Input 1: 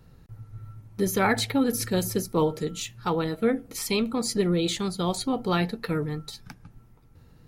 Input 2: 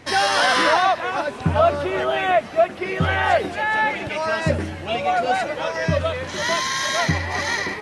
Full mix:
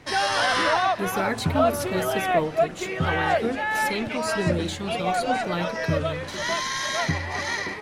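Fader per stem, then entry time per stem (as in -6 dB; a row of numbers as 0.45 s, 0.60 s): -4.0 dB, -4.5 dB; 0.00 s, 0.00 s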